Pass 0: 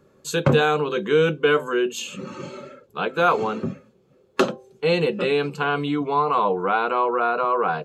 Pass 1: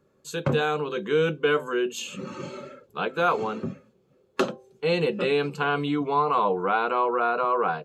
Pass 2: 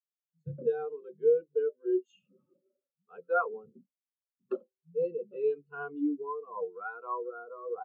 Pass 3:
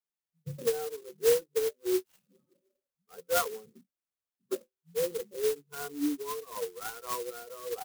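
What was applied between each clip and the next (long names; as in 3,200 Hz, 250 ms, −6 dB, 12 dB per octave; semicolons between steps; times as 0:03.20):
automatic gain control gain up to 7.5 dB; level −8.5 dB
rotating-speaker cabinet horn 0.85 Hz; multiband delay without the direct sound lows, highs 120 ms, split 170 Hz; every bin expanded away from the loudest bin 2.5 to 1; level −4.5 dB
converter with an unsteady clock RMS 0.1 ms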